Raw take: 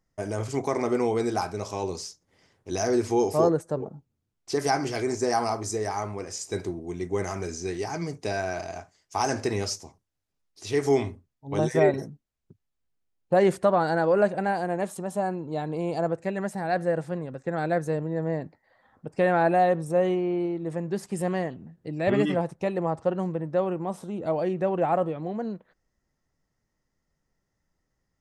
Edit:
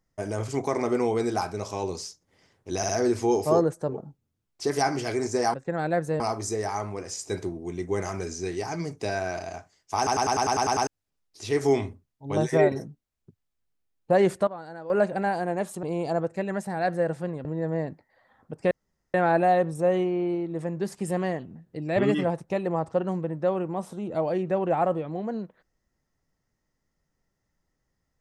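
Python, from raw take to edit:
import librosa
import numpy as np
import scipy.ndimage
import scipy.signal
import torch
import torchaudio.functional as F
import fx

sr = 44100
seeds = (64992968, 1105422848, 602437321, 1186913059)

y = fx.edit(x, sr, fx.stutter(start_s=2.77, slice_s=0.06, count=3),
    fx.stutter_over(start_s=9.19, slice_s=0.1, count=9),
    fx.fade_down_up(start_s=13.34, length_s=1.13, db=-16.0, fade_s=0.35, curve='log'),
    fx.cut(start_s=15.05, length_s=0.66),
    fx.move(start_s=17.33, length_s=0.66, to_s=5.42),
    fx.insert_room_tone(at_s=19.25, length_s=0.43), tone=tone)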